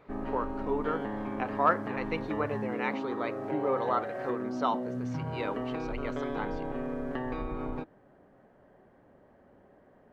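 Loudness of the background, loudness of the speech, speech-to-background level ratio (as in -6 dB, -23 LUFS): -36.0 LUFS, -34.0 LUFS, 2.0 dB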